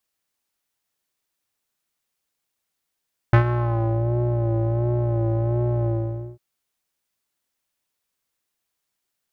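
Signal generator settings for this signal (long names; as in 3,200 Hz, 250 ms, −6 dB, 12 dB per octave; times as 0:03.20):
subtractive patch with vibrato A#2, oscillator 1 square, oscillator 2 saw, interval +19 semitones, oscillator 2 level −16 dB, filter lowpass, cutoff 440 Hz, Q 1.7, filter envelope 2 octaves, filter decay 0.68 s, filter sustain 20%, attack 3.2 ms, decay 0.10 s, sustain −11.5 dB, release 0.52 s, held 2.53 s, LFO 1.4 Hz, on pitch 52 cents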